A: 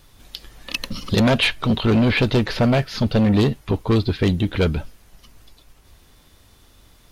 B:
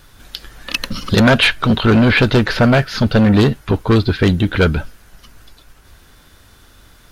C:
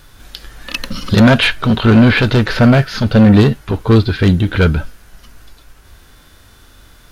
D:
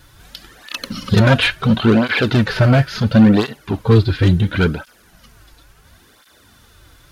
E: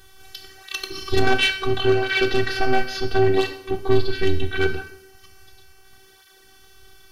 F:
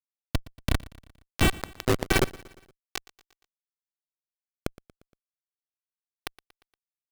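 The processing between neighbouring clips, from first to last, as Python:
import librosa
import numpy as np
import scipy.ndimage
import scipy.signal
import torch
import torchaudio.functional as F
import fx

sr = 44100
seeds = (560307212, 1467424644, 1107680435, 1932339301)

y1 = fx.peak_eq(x, sr, hz=1500.0, db=8.5, octaves=0.43)
y1 = y1 * 10.0 ** (5.0 / 20.0)
y2 = fx.hpss(y1, sr, part='harmonic', gain_db=7)
y2 = y2 * 10.0 ** (-2.5 / 20.0)
y3 = fx.flanger_cancel(y2, sr, hz=0.72, depth_ms=5.2)
y4 = fx.diode_clip(y3, sr, knee_db=-7.0)
y4 = fx.robotise(y4, sr, hz=383.0)
y4 = fx.rev_plate(y4, sr, seeds[0], rt60_s=0.73, hf_ratio=0.9, predelay_ms=0, drr_db=7.0)
y5 = fx.recorder_agc(y4, sr, target_db=-7.5, rise_db_per_s=31.0, max_gain_db=30)
y5 = fx.schmitt(y5, sr, flips_db=-15.0)
y5 = fx.echo_feedback(y5, sr, ms=117, feedback_pct=54, wet_db=-21.0)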